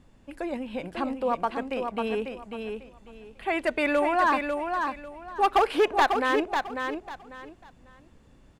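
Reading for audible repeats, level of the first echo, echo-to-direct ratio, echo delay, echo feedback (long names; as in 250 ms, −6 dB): 3, −5.5 dB, −5.0 dB, 546 ms, 24%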